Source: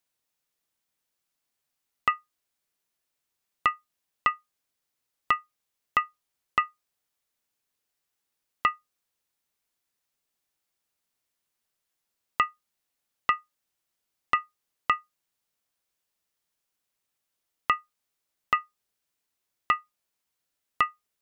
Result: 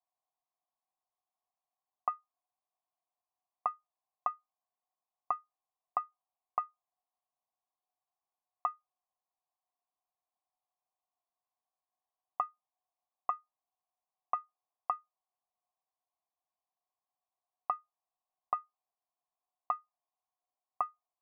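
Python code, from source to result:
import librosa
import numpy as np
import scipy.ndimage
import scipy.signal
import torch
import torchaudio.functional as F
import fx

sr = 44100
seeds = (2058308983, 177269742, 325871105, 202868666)

y = fx.formant_cascade(x, sr, vowel='a')
y = F.gain(torch.from_numpy(y), 8.0).numpy()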